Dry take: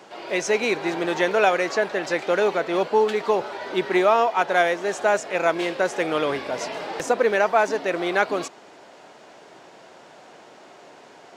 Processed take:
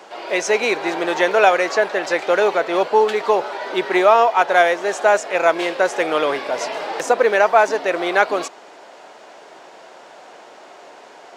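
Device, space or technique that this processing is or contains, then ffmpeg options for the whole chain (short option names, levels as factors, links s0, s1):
filter by subtraction: -filter_complex "[0:a]asplit=2[s0][s1];[s1]lowpass=650,volume=-1[s2];[s0][s2]amix=inputs=2:normalize=0,volume=1.58"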